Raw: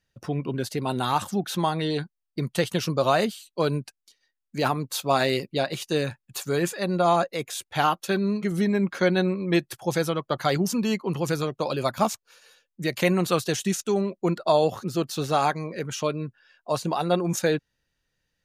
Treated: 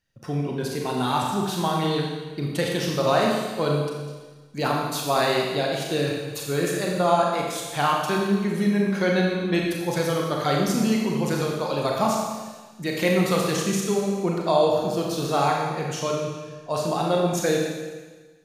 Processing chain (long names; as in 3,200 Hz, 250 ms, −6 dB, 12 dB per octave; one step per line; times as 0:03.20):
four-comb reverb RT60 1.4 s, combs from 28 ms, DRR −1.5 dB
level −2 dB